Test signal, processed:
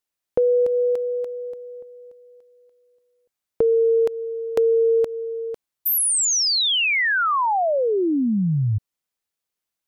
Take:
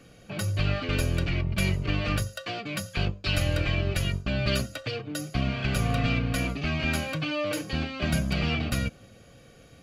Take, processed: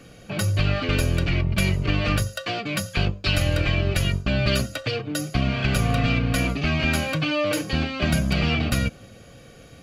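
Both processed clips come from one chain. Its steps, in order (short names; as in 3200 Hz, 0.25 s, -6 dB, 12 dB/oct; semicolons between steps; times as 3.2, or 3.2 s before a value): compressor, threshold -22 dBFS; gain +6 dB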